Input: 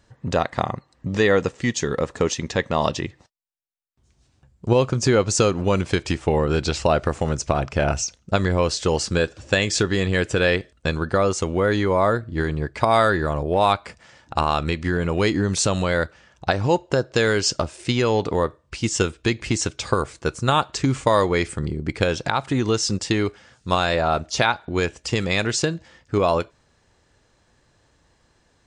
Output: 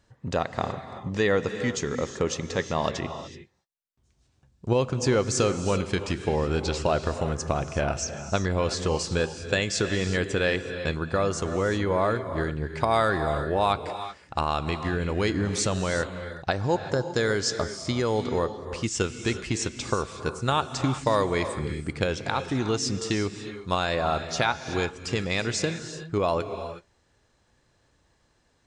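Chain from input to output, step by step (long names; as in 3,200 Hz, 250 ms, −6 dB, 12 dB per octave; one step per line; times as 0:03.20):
0:16.57–0:18.35: parametric band 2,700 Hz −13 dB 0.22 octaves
reverb whose tail is shaped and stops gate 400 ms rising, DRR 9 dB
level −5.5 dB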